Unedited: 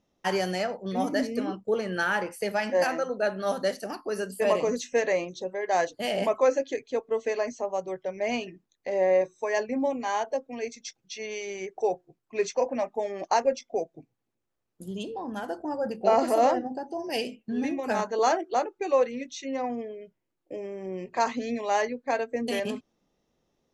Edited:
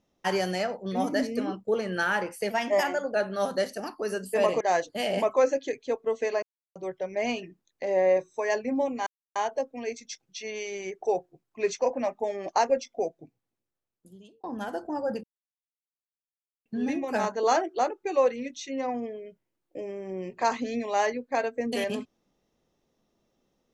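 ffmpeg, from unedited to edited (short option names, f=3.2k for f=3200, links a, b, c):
-filter_complex "[0:a]asplit=10[a][b][c][d][e][f][g][h][i][j];[a]atrim=end=2.504[k];[b]atrim=start=2.5:end=3.21,asetpts=PTS-STARTPTS,asetrate=48510,aresample=44100[l];[c]atrim=start=3.206:end=4.672[m];[d]atrim=start=5.648:end=7.47,asetpts=PTS-STARTPTS,afade=t=out:st=1.818:d=0.004:c=hsin[n];[e]atrim=start=7.47:end=7.8,asetpts=PTS-STARTPTS,volume=0[o];[f]atrim=start=7.8:end=10.11,asetpts=PTS-STARTPTS,afade=t=in:d=0.004:c=hsin,afade=t=out:st=2.306:d=0.004:c=hsin,apad=pad_dur=0.29[p];[g]atrim=start=10.11:end=15.19,asetpts=PTS-STARTPTS,afade=t=in:d=0.004:c=hsin,afade=t=out:st=3.69:d=1.39[q];[h]atrim=start=15.19:end=15.99,asetpts=PTS-STARTPTS,afade=t=in:d=0.004:c=hsin,afade=t=out:st=0.796:d=0.004:c=hsin[r];[i]atrim=start=15.99:end=17.41,asetpts=PTS-STARTPTS,volume=0[s];[j]atrim=start=17.41,asetpts=PTS-STARTPTS,afade=t=in:d=0.004:c=hsin[t];[k][l]acrossfade=d=0.004:c1=hsin:c2=hsin[u];[u][m]acrossfade=d=0.004:c1=hsin:c2=hsin[v];[n][o][p][q][r][s][t]concat=n=7:v=0:a=1[w];[v][w]acrossfade=d=0.004:c1=hsin:c2=hsin"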